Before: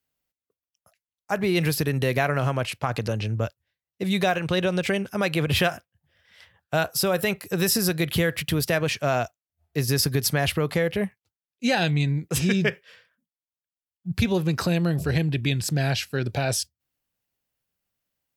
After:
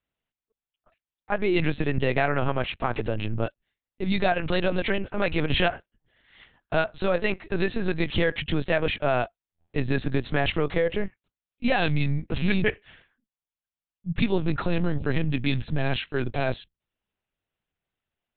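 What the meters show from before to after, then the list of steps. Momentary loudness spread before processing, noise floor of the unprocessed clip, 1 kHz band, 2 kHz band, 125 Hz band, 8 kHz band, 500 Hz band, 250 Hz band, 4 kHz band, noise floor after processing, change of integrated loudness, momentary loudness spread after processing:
6 LU, under -85 dBFS, -0.5 dB, -1.0 dB, -4.0 dB, under -40 dB, -0.5 dB, -1.5 dB, -4.5 dB, under -85 dBFS, -2.0 dB, 7 LU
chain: LPC vocoder at 8 kHz pitch kept

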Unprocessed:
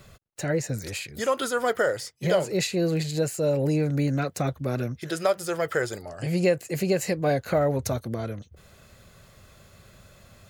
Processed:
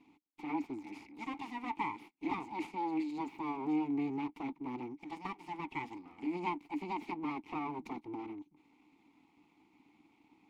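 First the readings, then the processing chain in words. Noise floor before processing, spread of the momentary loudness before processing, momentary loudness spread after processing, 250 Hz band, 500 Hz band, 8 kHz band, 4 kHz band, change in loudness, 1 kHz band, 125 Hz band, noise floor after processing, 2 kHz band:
-55 dBFS, 8 LU, 9 LU, -8.0 dB, -22.5 dB, under -30 dB, -19.5 dB, -13.0 dB, -5.5 dB, -25.5 dB, -71 dBFS, -14.0 dB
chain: full-wave rectifier; vowel filter u; gain +3.5 dB

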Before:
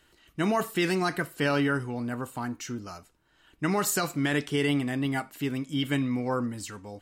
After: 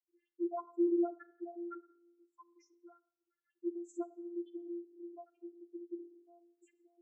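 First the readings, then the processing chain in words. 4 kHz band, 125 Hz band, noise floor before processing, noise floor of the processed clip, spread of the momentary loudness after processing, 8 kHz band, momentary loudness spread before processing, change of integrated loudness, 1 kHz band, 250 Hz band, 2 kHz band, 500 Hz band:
under -40 dB, under -40 dB, -65 dBFS, under -85 dBFS, 18 LU, under -30 dB, 11 LU, -11.0 dB, -17.0 dB, -10.5 dB, under -35 dB, -10.0 dB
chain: loudest bins only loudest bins 1; two-slope reverb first 0.6 s, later 1.5 s, from -24 dB, DRR 14.5 dB; vocoder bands 32, saw 345 Hz; gain -3.5 dB

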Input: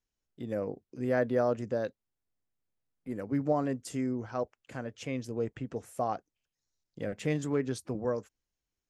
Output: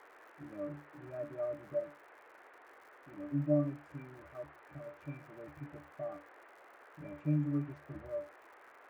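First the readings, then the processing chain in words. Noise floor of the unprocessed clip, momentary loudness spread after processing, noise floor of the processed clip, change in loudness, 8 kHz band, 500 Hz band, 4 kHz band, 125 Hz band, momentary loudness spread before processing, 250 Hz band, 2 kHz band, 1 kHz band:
under -85 dBFS, 25 LU, -59 dBFS, -6.0 dB, under -20 dB, -8.5 dB, under -15 dB, -1.5 dB, 11 LU, -5.0 dB, -10.5 dB, -14.0 dB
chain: octave resonator D, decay 0.29 s; band noise 330–1900 Hz -64 dBFS; crackle 130/s -60 dBFS; gain +5.5 dB

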